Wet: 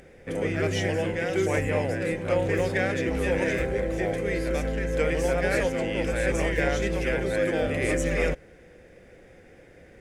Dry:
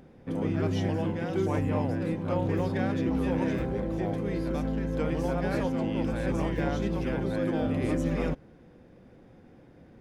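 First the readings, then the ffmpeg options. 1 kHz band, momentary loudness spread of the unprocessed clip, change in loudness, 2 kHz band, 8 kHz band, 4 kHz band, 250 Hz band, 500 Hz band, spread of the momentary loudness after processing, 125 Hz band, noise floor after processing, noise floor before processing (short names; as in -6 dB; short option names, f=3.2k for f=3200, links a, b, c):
+1.5 dB, 3 LU, +3.0 dB, +11.0 dB, n/a, +7.5 dB, -2.0 dB, +6.0 dB, 3 LU, -0.5 dB, -52 dBFS, -54 dBFS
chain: -af "equalizer=f=125:t=o:w=1:g=-7,equalizer=f=250:t=o:w=1:g=-10,equalizer=f=500:t=o:w=1:g=5,equalizer=f=1k:t=o:w=1:g=-10,equalizer=f=2k:t=o:w=1:g=10,equalizer=f=4k:t=o:w=1:g=-4,equalizer=f=8k:t=o:w=1:g=10,volume=6dB"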